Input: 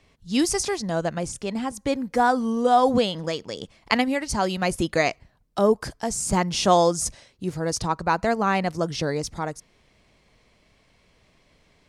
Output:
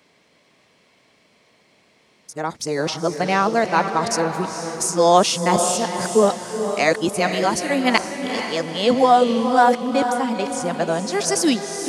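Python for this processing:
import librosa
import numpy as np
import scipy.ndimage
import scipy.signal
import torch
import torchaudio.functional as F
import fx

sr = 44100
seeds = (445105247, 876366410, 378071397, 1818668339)

p1 = np.flip(x).copy()
p2 = scipy.signal.sosfilt(scipy.signal.butter(2, 200.0, 'highpass', fs=sr, output='sos'), p1)
p3 = p2 + fx.echo_diffused(p2, sr, ms=469, feedback_pct=43, wet_db=-7, dry=0)
y = F.gain(torch.from_numpy(p3), 4.0).numpy()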